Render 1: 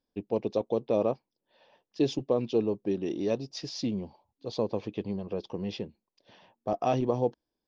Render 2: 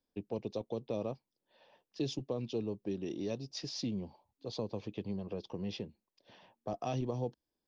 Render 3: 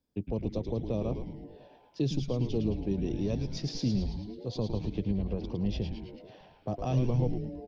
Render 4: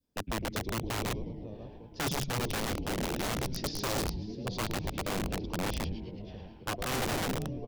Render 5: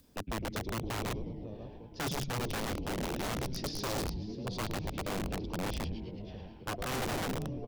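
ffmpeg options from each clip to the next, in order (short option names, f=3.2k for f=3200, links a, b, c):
-filter_complex "[0:a]acrossover=split=180|3000[a][b][c];[b]acompressor=threshold=-39dB:ratio=2[d];[a][d][c]amix=inputs=3:normalize=0,volume=-2.5dB"
-filter_complex "[0:a]equalizer=f=96:t=o:w=2.9:g=11.5,asplit=2[a][b];[b]asplit=8[c][d][e][f][g][h][i][j];[c]adelay=109,afreqshift=-140,volume=-5.5dB[k];[d]adelay=218,afreqshift=-280,volume=-10.1dB[l];[e]adelay=327,afreqshift=-420,volume=-14.7dB[m];[f]adelay=436,afreqshift=-560,volume=-19.2dB[n];[g]adelay=545,afreqshift=-700,volume=-23.8dB[o];[h]adelay=654,afreqshift=-840,volume=-28.4dB[p];[i]adelay=763,afreqshift=-980,volume=-33dB[q];[j]adelay=872,afreqshift=-1120,volume=-37.6dB[r];[k][l][m][n][o][p][q][r]amix=inputs=8:normalize=0[s];[a][s]amix=inputs=2:normalize=0"
-filter_complex "[0:a]asplit=2[a][b];[b]adelay=541,lowpass=f=4.7k:p=1,volume=-14dB,asplit=2[c][d];[d]adelay=541,lowpass=f=4.7k:p=1,volume=0.54,asplit=2[e][f];[f]adelay=541,lowpass=f=4.7k:p=1,volume=0.54,asplit=2[g][h];[h]adelay=541,lowpass=f=4.7k:p=1,volume=0.54,asplit=2[i][j];[j]adelay=541,lowpass=f=4.7k:p=1,volume=0.54[k];[a][c][e][g][i][k]amix=inputs=6:normalize=0,aeval=exprs='(mod(20*val(0)+1,2)-1)/20':c=same,adynamicequalizer=threshold=0.00794:dfrequency=1100:dqfactor=0.78:tfrequency=1100:tqfactor=0.78:attack=5:release=100:ratio=0.375:range=2:mode=cutabove:tftype=bell"
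-af "acompressor=mode=upward:threshold=-48dB:ratio=2.5,asoftclip=type=tanh:threshold=-29.5dB"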